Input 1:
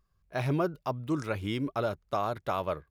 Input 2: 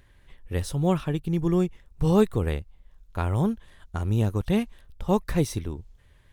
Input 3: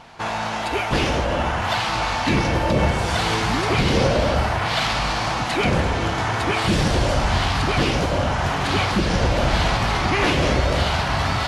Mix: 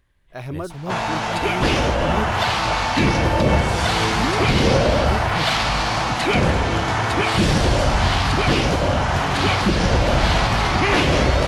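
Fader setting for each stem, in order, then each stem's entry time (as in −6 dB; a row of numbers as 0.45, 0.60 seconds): −1.5, −7.5, +2.0 decibels; 0.00, 0.00, 0.70 seconds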